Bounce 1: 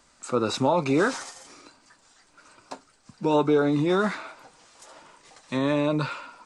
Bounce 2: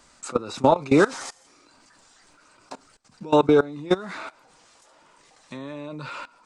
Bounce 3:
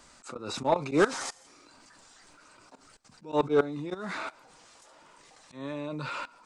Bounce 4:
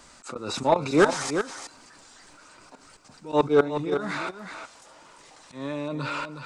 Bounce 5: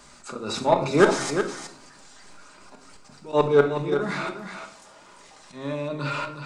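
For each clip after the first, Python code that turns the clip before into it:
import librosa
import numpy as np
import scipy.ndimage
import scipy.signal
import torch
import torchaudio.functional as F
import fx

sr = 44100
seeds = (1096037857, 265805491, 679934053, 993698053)

y1 = fx.level_steps(x, sr, step_db=21)
y1 = y1 * 10.0 ** (6.5 / 20.0)
y2 = fx.auto_swell(y1, sr, attack_ms=138.0)
y2 = 10.0 ** (-12.5 / 20.0) * np.tanh(y2 / 10.0 ** (-12.5 / 20.0))
y3 = y2 + 10.0 ** (-8.5 / 20.0) * np.pad(y2, (int(366 * sr / 1000.0), 0))[:len(y2)]
y3 = y3 * 10.0 ** (4.5 / 20.0)
y4 = fx.room_shoebox(y3, sr, seeds[0], volume_m3=870.0, walls='furnished', distance_m=1.3)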